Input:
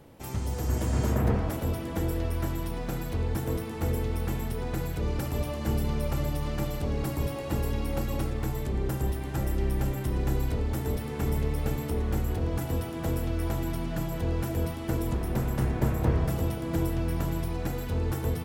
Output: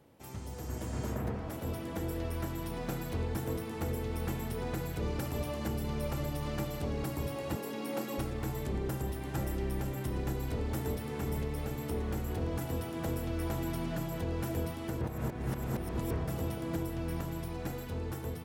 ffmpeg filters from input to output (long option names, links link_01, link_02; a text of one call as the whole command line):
ffmpeg -i in.wav -filter_complex "[0:a]asettb=1/sr,asplit=3[link_01][link_02][link_03];[link_01]atrim=end=7.554[link_04];[link_02]atrim=start=7.55:end=8.18,asetpts=PTS-STARTPTS,afade=type=in:duration=0.004:curve=qsin,afade=type=out:start_time=0.626:duration=0.004:curve=qsin,highpass=frequency=190:width=0.5412,highpass=frequency=190:width=1.3066[link_05];[link_03]atrim=start=8.176[link_06];[link_04][link_05]acrossfade=duration=0.004:curve1=hsin:curve2=qsin[link_07];[link_07][link_06]acrossfade=duration=0.004:curve1=qsin:curve2=hsin,asplit=3[link_08][link_09][link_10];[link_08]atrim=end=15.012[link_11];[link_09]atrim=start=15.008:end=16.112,asetpts=PTS-STARTPTS,areverse[link_12];[link_10]atrim=start=16.108[link_13];[link_11][link_12]acrossfade=duration=0.004:curve1=hsin:curve2=hsin[link_14];[link_14][link_13]acrossfade=duration=0.004:curve1=hsin:curve2=hsin,highpass=frequency=86:poles=1,dynaudnorm=framelen=540:gausssize=7:maxgain=7.5dB,alimiter=limit=-16dB:level=0:latency=1:release=446,volume=-8.5dB" out.wav